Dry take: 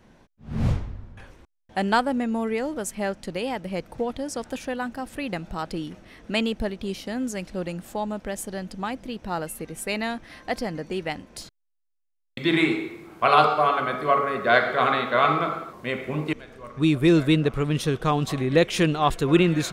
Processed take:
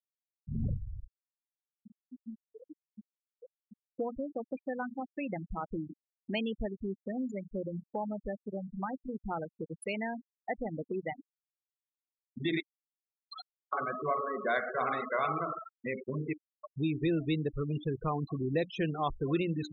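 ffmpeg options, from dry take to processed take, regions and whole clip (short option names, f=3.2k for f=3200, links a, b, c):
-filter_complex "[0:a]asettb=1/sr,asplit=3[a][b][c];[a]atrim=end=1.094[d];[b]atrim=start=1.09:end=3.91,asetpts=PTS-STARTPTS,afade=t=in:d=0.004:c=qsin,afade=t=out:st=2.816:d=0.004:c=qsin,acompressor=threshold=-43dB:ratio=2.5:attack=3.2:release=140:knee=1:detection=peak,aeval=exprs='0.015*(abs(mod(val(0)/0.015+3,4)-2)-1)':c=same[e];[c]atrim=start=3.906[f];[d][e]acrossfade=d=0.004:c1=hsin:c2=qsin[g];[g][f]acrossfade=d=0.004:c1=qsin:c2=hsin,asettb=1/sr,asplit=3[h][i][j];[h]atrim=end=12.604[k];[i]atrim=start=12.6:end=13.73,asetpts=PTS-STARTPTS,afade=t=in:d=0.004:c=qsin,afade=t=out:st=1.126:d=0.004:c=qsin,bandpass=f=4.6k:t=q:w=3.3,asplit=2[l][m];[m]adelay=20,volume=-12dB[n];[l][n]amix=inputs=2:normalize=0,atrim=end_sample=49833[o];[j]atrim=start=13.726[p];[k][o]acrossfade=d=0.004:c1=hsin:c2=qsin[q];[q][p]acrossfade=d=0.004:c1=qsin:c2=hsin,bandreject=f=60:t=h:w=6,bandreject=f=120:t=h:w=6,bandreject=f=180:t=h:w=6,bandreject=f=240:t=h:w=6,bandreject=f=300:t=h:w=6,afftfilt=real='re*gte(hypot(re,im),0.1)':imag='im*gte(hypot(re,im),0.1)':win_size=1024:overlap=0.75,acompressor=threshold=-37dB:ratio=2"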